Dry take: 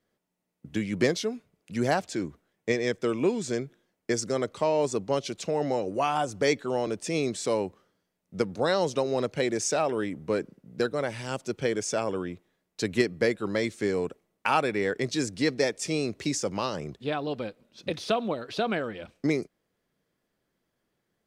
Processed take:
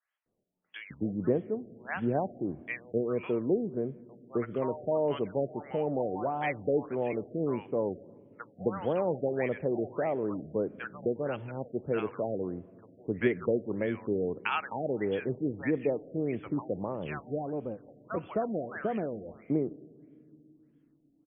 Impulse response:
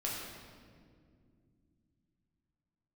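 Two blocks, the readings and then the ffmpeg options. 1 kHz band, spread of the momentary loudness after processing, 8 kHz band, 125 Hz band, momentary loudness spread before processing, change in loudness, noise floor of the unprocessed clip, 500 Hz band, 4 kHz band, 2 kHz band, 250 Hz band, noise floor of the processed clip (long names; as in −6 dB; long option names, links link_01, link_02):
−6.0 dB, 8 LU, below −40 dB, −2.5 dB, 10 LU, −3.5 dB, −80 dBFS, −3.0 dB, −16.0 dB, −6.5 dB, −2.5 dB, −67 dBFS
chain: -filter_complex "[0:a]acrossover=split=950[link_01][link_02];[link_01]adelay=260[link_03];[link_03][link_02]amix=inputs=2:normalize=0,asplit=2[link_04][link_05];[1:a]atrim=start_sample=2205[link_06];[link_05][link_06]afir=irnorm=-1:irlink=0,volume=-20.5dB[link_07];[link_04][link_07]amix=inputs=2:normalize=0,afftfilt=real='re*lt(b*sr/1024,740*pow(3500/740,0.5+0.5*sin(2*PI*1.6*pts/sr)))':imag='im*lt(b*sr/1024,740*pow(3500/740,0.5+0.5*sin(2*PI*1.6*pts/sr)))':win_size=1024:overlap=0.75,volume=-3dB"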